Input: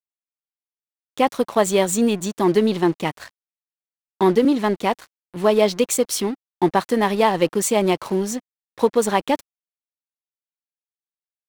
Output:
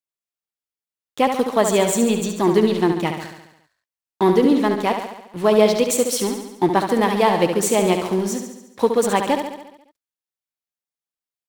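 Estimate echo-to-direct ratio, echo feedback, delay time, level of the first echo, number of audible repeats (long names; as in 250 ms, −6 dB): −5.0 dB, 59%, 70 ms, −7.0 dB, 7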